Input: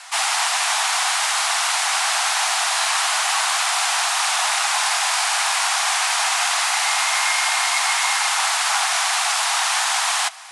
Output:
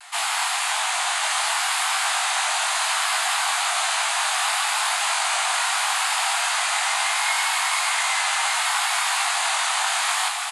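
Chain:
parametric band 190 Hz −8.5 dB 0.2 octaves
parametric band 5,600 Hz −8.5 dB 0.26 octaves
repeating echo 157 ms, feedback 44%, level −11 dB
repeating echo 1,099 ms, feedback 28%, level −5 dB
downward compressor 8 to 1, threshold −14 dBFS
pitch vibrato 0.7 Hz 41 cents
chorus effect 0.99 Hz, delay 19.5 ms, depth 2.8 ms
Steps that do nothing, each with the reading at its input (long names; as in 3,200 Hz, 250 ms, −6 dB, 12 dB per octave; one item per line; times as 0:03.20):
parametric band 190 Hz: nothing at its input below 540 Hz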